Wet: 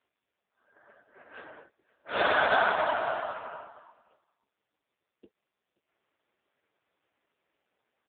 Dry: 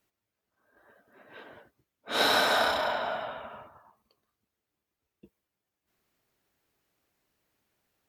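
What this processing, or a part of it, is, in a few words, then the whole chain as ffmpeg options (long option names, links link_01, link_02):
satellite phone: -af "highpass=330,lowpass=3100,aecho=1:1:525:0.0631,volume=6.5dB" -ar 8000 -c:a libopencore_amrnb -b:a 5150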